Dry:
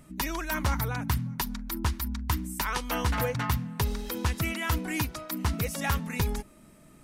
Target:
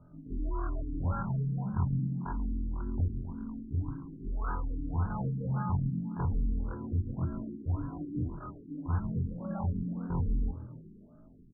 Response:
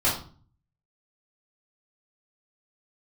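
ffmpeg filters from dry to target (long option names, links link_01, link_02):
-filter_complex "[0:a]afftfilt=real='re':imag='-im':win_size=2048:overlap=0.75,lowshelf=frequency=190:gain=7,asplit=2[link_01][link_02];[link_02]alimiter=limit=-24dB:level=0:latency=1:release=32,volume=-1.5dB[link_03];[link_01][link_03]amix=inputs=2:normalize=0,atempo=0.61,asplit=7[link_04][link_05][link_06][link_07][link_08][link_09][link_10];[link_05]adelay=136,afreqshift=39,volume=-14dB[link_11];[link_06]adelay=272,afreqshift=78,volume=-19dB[link_12];[link_07]adelay=408,afreqshift=117,volume=-24.1dB[link_13];[link_08]adelay=544,afreqshift=156,volume=-29.1dB[link_14];[link_09]adelay=680,afreqshift=195,volume=-34.1dB[link_15];[link_10]adelay=816,afreqshift=234,volume=-39.2dB[link_16];[link_04][link_11][link_12][link_13][link_14][link_15][link_16]amix=inputs=7:normalize=0,afftfilt=real='re*lt(b*sr/1024,420*pow(1700/420,0.5+0.5*sin(2*PI*1.8*pts/sr)))':imag='im*lt(b*sr/1024,420*pow(1700/420,0.5+0.5*sin(2*PI*1.8*pts/sr)))':win_size=1024:overlap=0.75,volume=-6dB"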